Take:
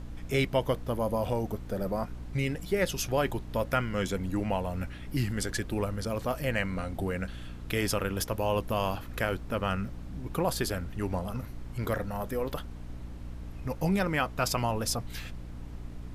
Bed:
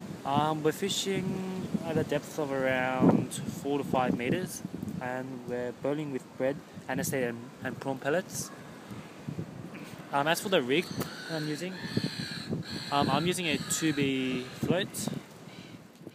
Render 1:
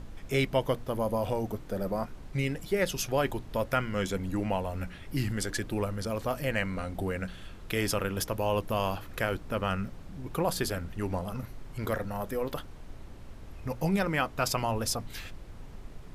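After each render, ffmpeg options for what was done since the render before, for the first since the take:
-af "bandreject=f=60:t=h:w=4,bandreject=f=120:t=h:w=4,bandreject=f=180:t=h:w=4,bandreject=f=240:t=h:w=4,bandreject=f=300:t=h:w=4"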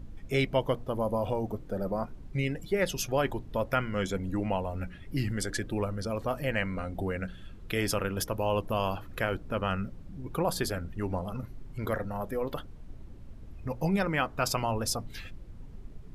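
-af "afftdn=nr=10:nf=-46"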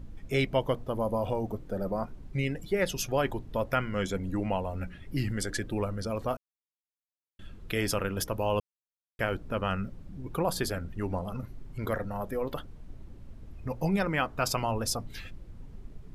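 -filter_complex "[0:a]asplit=5[a][b][c][d][e];[a]atrim=end=6.37,asetpts=PTS-STARTPTS,afade=t=out:st=6.366:d=0.004:c=hsin[f];[b]atrim=start=6.37:end=7.39,asetpts=PTS-STARTPTS,volume=0[g];[c]atrim=start=7.39:end=8.6,asetpts=PTS-STARTPTS,afade=t=in:d=0.004:c=hsin,afade=t=out:st=1.206:d=0.004:c=hsin[h];[d]atrim=start=8.6:end=9.19,asetpts=PTS-STARTPTS,volume=0[i];[e]atrim=start=9.19,asetpts=PTS-STARTPTS,afade=t=in:d=0.004:c=hsin[j];[f][g][h][i][j]concat=n=5:v=0:a=1"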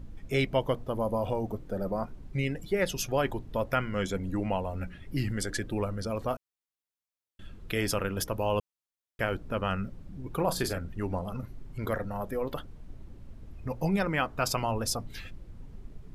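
-filter_complex "[0:a]asettb=1/sr,asplit=3[a][b][c];[a]atrim=end=10.364[d];[b]atrim=start=10.36:end=10.78,asetpts=PTS-STARTPTS,afade=t=in:d=0.004:c=qsin,afade=t=out:st=0.416:d=0.004:c=qsin,asplit=2[e][f];[f]adelay=33,volume=-9.5dB[g];[e][g]amix=inputs=2:normalize=0,atrim=end_sample=18522[h];[c]atrim=start=10.776[i];[d][h]acrossfade=d=0.004:c1=hsin:c2=qsin[j];[j][i]acrossfade=d=0.004:c1=qsin:c2=hsin"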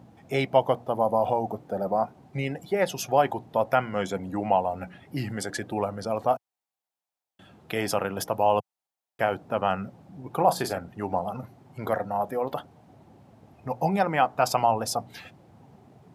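-af "highpass=f=110:w=0.5412,highpass=f=110:w=1.3066,equalizer=f=770:t=o:w=0.68:g=14"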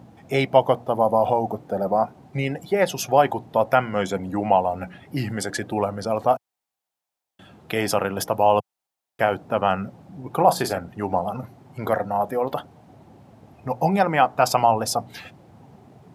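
-af "volume=4.5dB"

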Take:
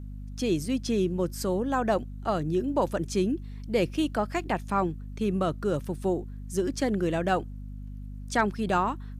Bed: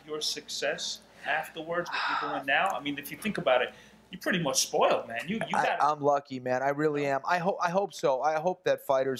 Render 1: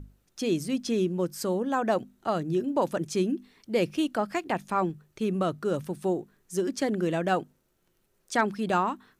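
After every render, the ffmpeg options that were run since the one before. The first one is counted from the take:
-af "bandreject=f=50:t=h:w=6,bandreject=f=100:t=h:w=6,bandreject=f=150:t=h:w=6,bandreject=f=200:t=h:w=6,bandreject=f=250:t=h:w=6"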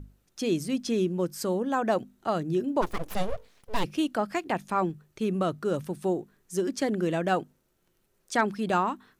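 -filter_complex "[0:a]asplit=3[a][b][c];[a]afade=t=out:st=2.81:d=0.02[d];[b]aeval=exprs='abs(val(0))':c=same,afade=t=in:st=2.81:d=0.02,afade=t=out:st=3.83:d=0.02[e];[c]afade=t=in:st=3.83:d=0.02[f];[d][e][f]amix=inputs=3:normalize=0"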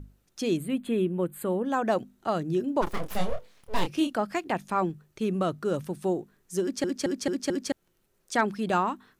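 -filter_complex "[0:a]asettb=1/sr,asplit=3[a][b][c];[a]atrim=end=0.574[d];[b]atrim=start=0.57:end=1.65,asetpts=PTS-STARTPTS,afade=t=in:d=0.004:c=qsin,afade=t=out:st=1.076:d=0.004:c=qsin,asuperstop=centerf=5500:order=4:qfactor=1[e];[c]atrim=start=1.646[f];[d][e]acrossfade=d=0.004:c1=hsin:c2=qsin[g];[g][f]acrossfade=d=0.004:c1=qsin:c2=hsin,asettb=1/sr,asplit=3[h][i][j];[h]atrim=end=2.844[k];[i]atrim=start=2.84:end=4.13,asetpts=PTS-STARTPTS,afade=t=in:d=0.004:c=qsin,afade=t=out:st=1.286:d=0.004:c=qsin,asplit=2[l][m];[m]adelay=28,volume=-6dB[n];[l][n]amix=inputs=2:normalize=0,atrim=end_sample=56889[o];[j]atrim=start=4.126[p];[k][o]acrossfade=d=0.004:c1=hsin:c2=qsin[q];[q][p]acrossfade=d=0.004:c1=qsin:c2=hsin,asplit=6[r][s][t][u][v][w];[r]atrim=end=6.842[x];[s]atrim=start=6.618:end=6.842[y];[t]atrim=start=6.618:end=6.842[z];[u]atrim=start=6.618:end=6.842[aa];[v]atrim=start=6.618:end=6.842[ab];[w]atrim=start=7.718[ac];[x][y]acrossfade=d=0.004:c1=hsin:c2=hsin[ad];[ad][z]acrossfade=d=0.004:c1=hsin:c2=hsin[ae];[ae][aa]acrossfade=d=0.004:c1=hsin:c2=hsin[af];[af][ab]acrossfade=d=0.004:c1=hsin:c2=hsin[ag];[ag][ac]acrossfade=d=0.004:c1=hsin:c2=hsin"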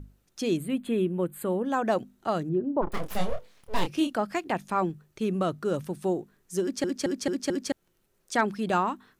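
-filter_complex "[0:a]asettb=1/sr,asplit=3[a][b][c];[a]atrim=end=2.494[d];[b]atrim=start=2.49:end=2.92,asetpts=PTS-STARTPTS,afade=t=in:d=0.004:c=qsin,afade=t=out:st=0.426:d=0.004:c=qsin,lowpass=1k[e];[c]atrim=start=2.916[f];[d][e]acrossfade=d=0.004:c1=hsin:c2=qsin[g];[g][f]acrossfade=d=0.004:c1=qsin:c2=hsin"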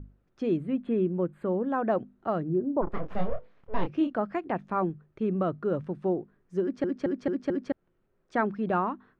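-af "lowpass=1.5k,equalizer=f=870:t=o:w=0.43:g=-3"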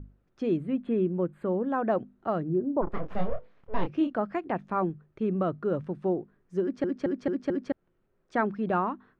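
-af anull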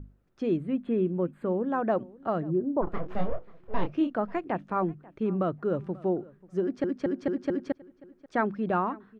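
-filter_complex "[0:a]asplit=2[a][b];[b]adelay=538,lowpass=f=3.7k:p=1,volume=-22dB,asplit=2[c][d];[d]adelay=538,lowpass=f=3.7k:p=1,volume=0.17[e];[a][c][e]amix=inputs=3:normalize=0"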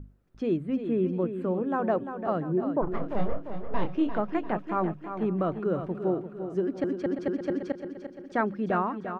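-af "aecho=1:1:346|692|1038|1384|1730|2076:0.355|0.174|0.0852|0.0417|0.0205|0.01"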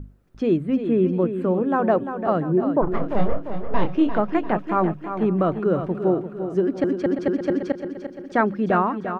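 -af "volume=7dB"

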